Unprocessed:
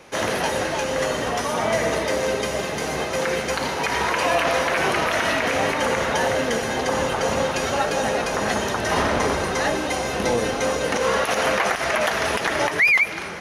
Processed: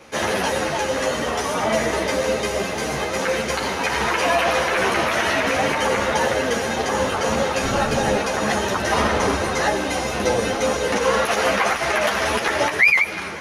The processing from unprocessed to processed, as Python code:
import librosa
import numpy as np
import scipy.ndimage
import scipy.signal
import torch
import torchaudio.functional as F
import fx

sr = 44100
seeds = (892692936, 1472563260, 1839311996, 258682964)

y = fx.octave_divider(x, sr, octaves=1, level_db=4.0, at=(7.61, 8.16))
y = fx.ensemble(y, sr)
y = F.gain(torch.from_numpy(y), 4.5).numpy()